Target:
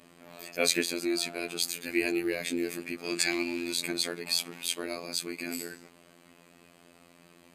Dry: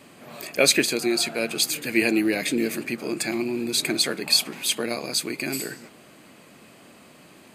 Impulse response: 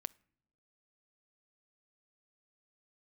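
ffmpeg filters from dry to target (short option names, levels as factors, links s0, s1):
-filter_complex "[0:a]asettb=1/sr,asplit=3[s0][s1][s2];[s0]atrim=end=3.044[s3];[s1]atrim=start=3.04:end=3.73,asetpts=PTS-STARTPTS,afade=t=in:d=0.004:c=qsin,afade=t=out:st=0.686:d=0.004:c=qsin,equalizer=f=3800:w=0.36:g=11.5[s4];[s2]atrim=start=3.726[s5];[s3][s4]acrossfade=d=0.004:c1=hsin:c2=qsin[s6];[s6][s5]acrossfade=d=0.004:c1=qsin:c2=hsin,afftfilt=real='hypot(re,im)*cos(PI*b)':imag='0':win_size=2048:overlap=0.75,volume=0.596"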